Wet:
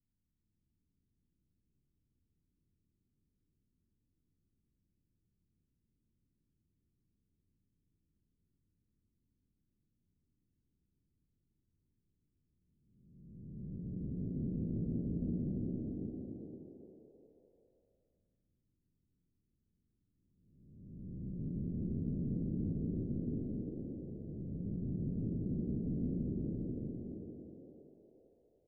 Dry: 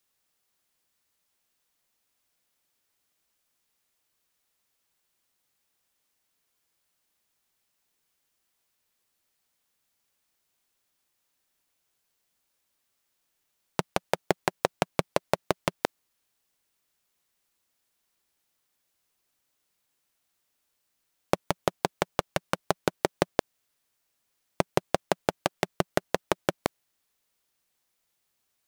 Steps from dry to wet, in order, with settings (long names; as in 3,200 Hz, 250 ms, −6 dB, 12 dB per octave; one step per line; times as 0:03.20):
spectrum smeared in time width 878 ms
inverse Chebyshev low-pass filter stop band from 840 Hz, stop band 60 dB
low-shelf EQ 72 Hz +11 dB
on a send: echo with shifted repeats 399 ms, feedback 39%, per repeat +68 Hz, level −3 dB
on the sum: level +10.5 dB